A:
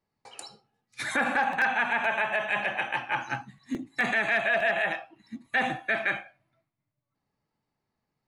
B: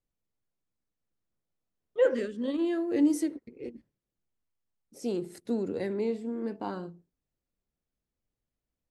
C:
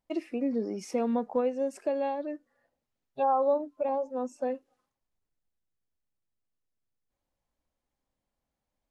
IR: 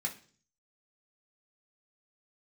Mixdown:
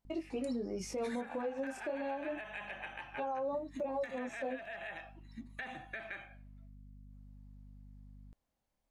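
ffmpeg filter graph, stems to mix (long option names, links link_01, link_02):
-filter_complex "[0:a]aeval=exprs='val(0)+0.00562*(sin(2*PI*50*n/s)+sin(2*PI*2*50*n/s)/2+sin(2*PI*3*50*n/s)/3+sin(2*PI*4*50*n/s)/4+sin(2*PI*5*50*n/s)/5)':channel_layout=same,acompressor=threshold=-34dB:ratio=12,adelay=50,volume=-5.5dB,asplit=2[link_01][link_02];[link_02]volume=-17.5dB[link_03];[2:a]flanger=delay=18.5:depth=7.9:speed=0.28,volume=2.5dB[link_04];[3:a]atrim=start_sample=2205[link_05];[link_03][link_05]afir=irnorm=-1:irlink=0[link_06];[link_01][link_04][link_06]amix=inputs=3:normalize=0,alimiter=level_in=5.5dB:limit=-24dB:level=0:latency=1:release=237,volume=-5.5dB"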